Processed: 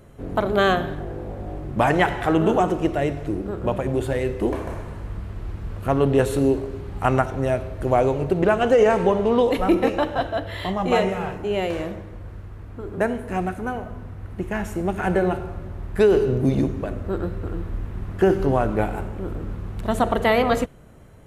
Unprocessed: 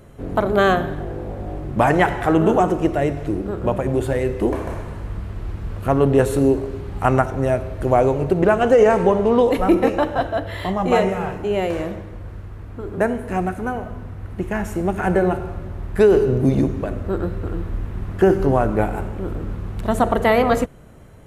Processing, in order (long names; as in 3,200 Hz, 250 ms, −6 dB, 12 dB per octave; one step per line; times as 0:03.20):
dynamic equaliser 3,400 Hz, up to +5 dB, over −40 dBFS, Q 1.2
level −3 dB